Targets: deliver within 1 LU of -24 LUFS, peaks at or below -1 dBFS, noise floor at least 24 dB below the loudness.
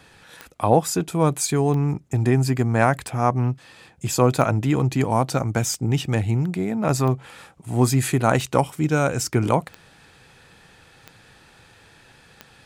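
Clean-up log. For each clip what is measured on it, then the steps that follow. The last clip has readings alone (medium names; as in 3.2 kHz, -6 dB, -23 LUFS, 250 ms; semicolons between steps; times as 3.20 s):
clicks found 10; loudness -21.5 LUFS; peak level -3.5 dBFS; loudness target -24.0 LUFS
-> de-click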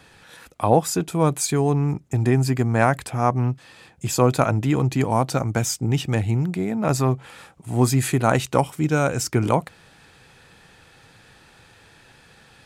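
clicks found 0; loudness -21.5 LUFS; peak level -3.5 dBFS; loudness target -24.0 LUFS
-> trim -2.5 dB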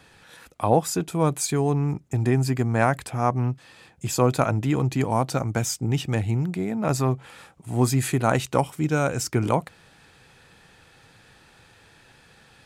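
loudness -24.0 LUFS; peak level -6.0 dBFS; noise floor -55 dBFS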